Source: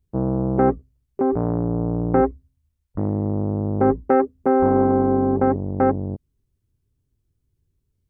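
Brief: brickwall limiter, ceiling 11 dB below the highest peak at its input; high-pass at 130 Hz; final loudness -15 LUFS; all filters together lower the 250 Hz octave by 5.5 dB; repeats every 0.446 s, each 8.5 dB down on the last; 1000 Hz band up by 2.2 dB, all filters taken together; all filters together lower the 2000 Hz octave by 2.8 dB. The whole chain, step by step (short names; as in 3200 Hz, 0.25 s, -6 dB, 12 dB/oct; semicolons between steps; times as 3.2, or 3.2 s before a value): HPF 130 Hz; bell 250 Hz -6.5 dB; bell 1000 Hz +5 dB; bell 2000 Hz -6.5 dB; limiter -17.5 dBFS; feedback echo 0.446 s, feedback 38%, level -8.5 dB; gain +13.5 dB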